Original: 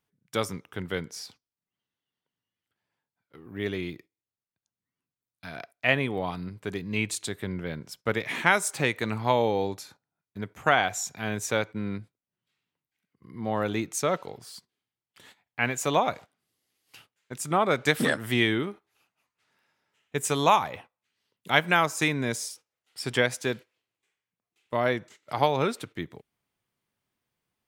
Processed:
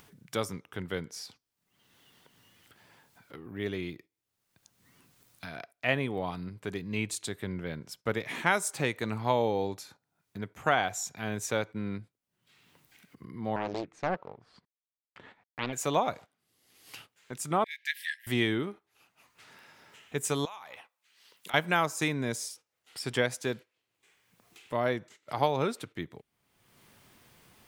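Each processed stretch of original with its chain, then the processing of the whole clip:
13.56–15.73 s: companding laws mixed up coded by A + low-pass 1.8 kHz + loudspeaker Doppler distortion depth 0.94 ms
17.64–18.27 s: brick-wall FIR high-pass 1.6 kHz + peaking EQ 7.7 kHz -13 dB 1.2 oct
20.45–21.54 s: high-pass 1.3 kHz 6 dB/octave + compression 4:1, threshold -40 dBFS
whole clip: dynamic bell 2.3 kHz, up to -3 dB, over -36 dBFS, Q 0.85; upward compressor, threshold -35 dBFS; trim -3 dB

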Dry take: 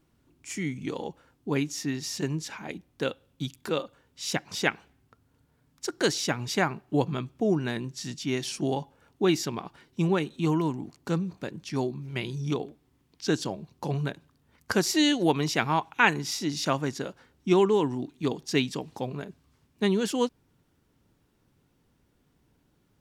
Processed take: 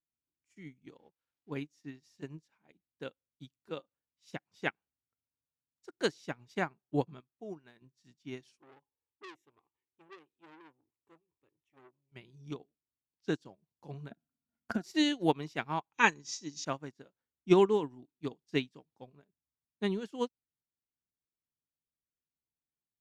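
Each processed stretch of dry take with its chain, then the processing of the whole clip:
0.97–1.52 s: zero-crossing glitches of -33.5 dBFS + transient shaper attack -1 dB, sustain -10 dB + distance through air 220 m
7.20–7.82 s: median filter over 5 samples + bass shelf 380 Hz -8.5 dB
8.57–12.12 s: static phaser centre 960 Hz, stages 8 + transformer saturation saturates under 2.6 kHz
14.11–14.84 s: small resonant body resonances 230/680/1400 Hz, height 17 dB + compression 12:1, threshold -20 dBFS
15.92–16.65 s: resonant low-pass 6.4 kHz, resonance Q 5.9 + upward compressor, threshold -29 dBFS + comb of notches 710 Hz
whole clip: treble shelf 5.7 kHz -6 dB; upward expansion 2.5:1, over -42 dBFS

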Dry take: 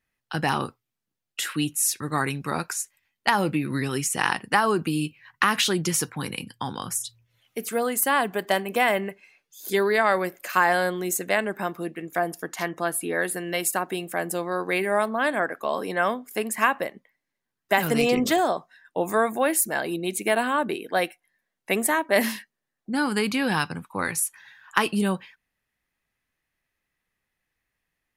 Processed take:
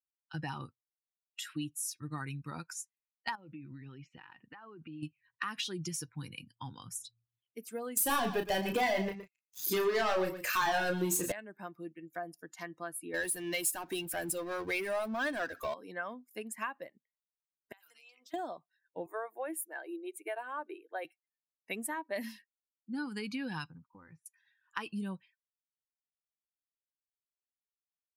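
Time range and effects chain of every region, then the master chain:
3.35–5.03 s: low-pass 3.5 kHz 24 dB/octave + compression 20:1, threshold -29 dBFS + bass shelf 120 Hz -4 dB
7.97–11.32 s: waveshaping leveller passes 5 + doubling 32 ms -4.5 dB + delay 116 ms -9 dB
13.14–15.74 s: treble shelf 3.8 kHz +8 dB + power-law waveshaper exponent 0.5 + upward expansion, over -23 dBFS
17.72–18.34 s: high-pass 1.1 kHz + dynamic bell 2 kHz, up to -4 dB, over -34 dBFS, Q 2.7 + compression 10:1, threshold -38 dBFS
19.06–21.05 s: Chebyshev high-pass 330 Hz, order 4 + peaking EQ 5.1 kHz -9.5 dB 1.2 oct + tape noise reduction on one side only decoder only
23.70–24.26 s: low-pass 1.4 kHz + compression 4:1, threshold -33 dBFS + band-stop 640 Hz, Q 8.5
whole clip: expander on every frequency bin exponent 1.5; compression 2.5:1, threshold -33 dBFS; trim -3.5 dB

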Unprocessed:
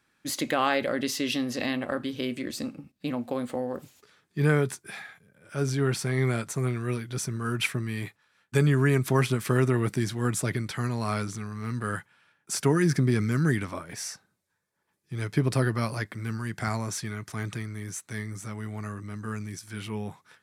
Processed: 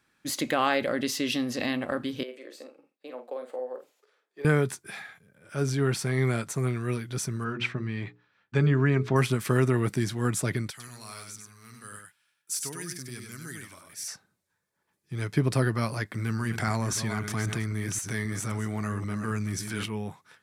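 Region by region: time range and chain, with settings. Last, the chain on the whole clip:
2.23–4.45 s: ladder high-pass 400 Hz, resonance 45% + treble shelf 3.6 kHz -7 dB + doubling 47 ms -7.5 dB
7.44–9.16 s: distance through air 170 m + hum notches 60/120/180/240/300/360/420/480 Hz
10.70–14.08 s: pre-emphasis filter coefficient 0.9 + delay 97 ms -4.5 dB
16.14–19.86 s: chunks repeated in reverse 264 ms, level -10 dB + level flattener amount 50%
whole clip: none

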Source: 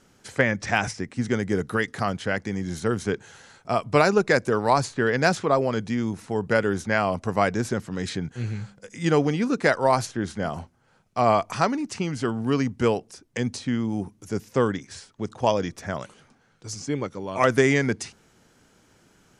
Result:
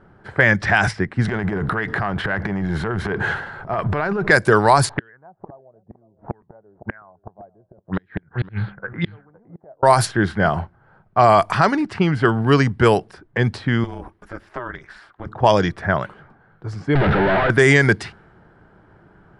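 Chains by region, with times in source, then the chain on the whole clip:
1.25–4.30 s: companding laws mixed up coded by mu + transient shaper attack -9 dB, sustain +11 dB + compression 16:1, threshold -27 dBFS
4.89–9.83 s: inverted gate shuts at -19 dBFS, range -40 dB + delay 512 ms -18.5 dB + touch-sensitive low-pass 550–3900 Hz up, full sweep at -31.5 dBFS
13.84–15.26 s: tilt shelf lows -9.5 dB, about 630 Hz + compression 3:1, threshold -35 dBFS + ring modulator 120 Hz
16.95–17.50 s: one-bit comparator + distance through air 370 m + band-stop 1.1 kHz, Q 5.1
whole clip: level-controlled noise filter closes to 1.1 kHz, open at -15.5 dBFS; graphic EQ with 31 bands 250 Hz -11 dB, 500 Hz -6 dB, 1.6 kHz +5 dB, 2.5 kHz -4 dB, 6.3 kHz -9 dB, 10 kHz +9 dB; loudness maximiser +12.5 dB; trim -1 dB

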